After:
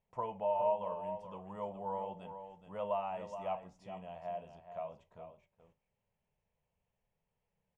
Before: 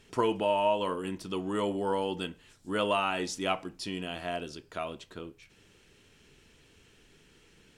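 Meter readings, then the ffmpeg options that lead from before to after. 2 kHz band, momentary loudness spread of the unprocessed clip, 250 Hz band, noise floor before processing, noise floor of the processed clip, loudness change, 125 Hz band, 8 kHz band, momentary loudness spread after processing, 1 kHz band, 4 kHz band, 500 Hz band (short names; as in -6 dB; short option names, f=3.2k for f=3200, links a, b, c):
-20.5 dB, 13 LU, -16.0 dB, -61 dBFS, under -85 dBFS, -8.0 dB, -11.0 dB, under -25 dB, 16 LU, -6.0 dB, -24.5 dB, -7.0 dB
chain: -af "highshelf=f=8.1k:g=5,aecho=1:1:421:0.335,agate=range=-11dB:threshold=-51dB:ratio=16:detection=peak,firequalizer=gain_entry='entry(200,0);entry(300,-19);entry(560,7);entry(940,6);entry(1400,-12);entry(2100,-6);entry(4200,-23);entry(6600,-16);entry(11000,-29)':delay=0.05:min_phase=1,flanger=delay=5.4:depth=4.3:regen=-85:speed=0.44:shape=sinusoidal,volume=-7dB"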